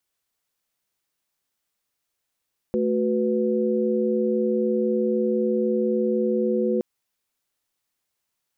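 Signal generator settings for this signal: chord A3/F#4/B4 sine, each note -24 dBFS 4.07 s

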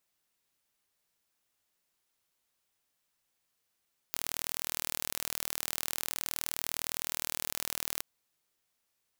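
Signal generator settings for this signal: pulse train 39.6 per s, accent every 0, -6.5 dBFS 3.88 s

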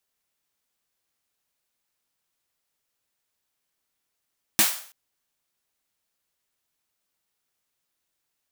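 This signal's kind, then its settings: snare drum length 0.33 s, tones 210 Hz, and 320 Hz, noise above 630 Hz, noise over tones 9.5 dB, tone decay 0.13 s, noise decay 0.49 s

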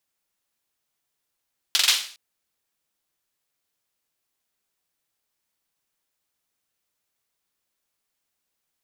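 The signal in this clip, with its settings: hand clap length 0.41 s, bursts 4, apart 43 ms, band 3.6 kHz, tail 0.46 s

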